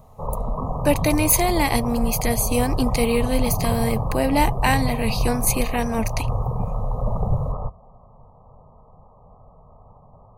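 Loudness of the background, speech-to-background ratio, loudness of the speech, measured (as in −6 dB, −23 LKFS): −27.0 LKFS, 4.5 dB, −22.5 LKFS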